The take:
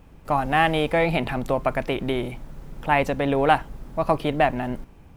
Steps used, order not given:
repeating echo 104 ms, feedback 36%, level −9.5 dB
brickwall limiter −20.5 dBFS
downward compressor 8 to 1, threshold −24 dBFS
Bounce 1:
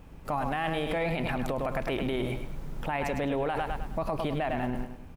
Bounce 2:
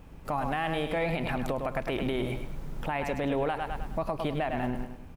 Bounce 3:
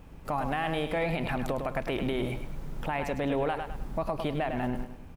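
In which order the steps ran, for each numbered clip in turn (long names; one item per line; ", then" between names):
repeating echo, then brickwall limiter, then downward compressor
repeating echo, then downward compressor, then brickwall limiter
downward compressor, then repeating echo, then brickwall limiter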